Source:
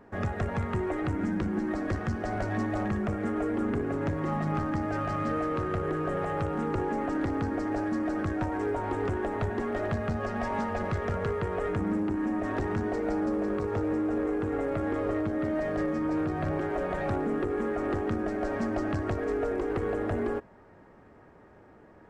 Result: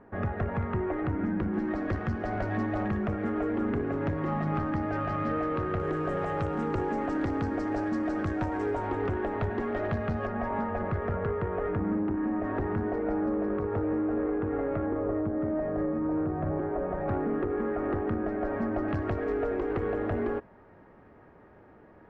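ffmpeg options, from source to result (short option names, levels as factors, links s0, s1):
-af "asetnsamples=n=441:p=0,asendcmd='1.54 lowpass f 3500;5.8 lowpass f 6500;8.87 lowpass f 3700;10.27 lowpass f 1800;14.86 lowpass f 1100;17.08 lowpass f 1900;18.88 lowpass f 3200',lowpass=2100"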